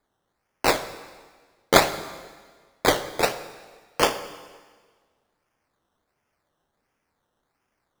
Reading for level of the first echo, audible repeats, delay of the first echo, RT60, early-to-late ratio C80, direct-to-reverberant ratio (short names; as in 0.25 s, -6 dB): none, none, none, 1.6 s, 14.0 dB, 11.0 dB